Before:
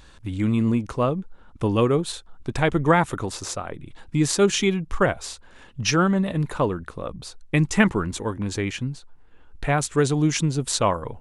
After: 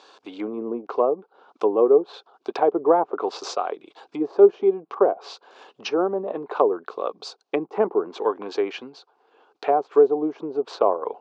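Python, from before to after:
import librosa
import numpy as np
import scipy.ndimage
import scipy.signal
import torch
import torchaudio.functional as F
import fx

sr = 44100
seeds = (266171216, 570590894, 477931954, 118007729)

y = fx.env_lowpass_down(x, sr, base_hz=620.0, full_db=-18.0)
y = fx.cabinet(y, sr, low_hz=350.0, low_slope=24, high_hz=6200.0, hz=(420.0, 750.0, 1100.0, 1900.0, 4600.0), db=(8, 9, 5, -9, 4))
y = F.gain(torch.from_numpy(y), 1.5).numpy()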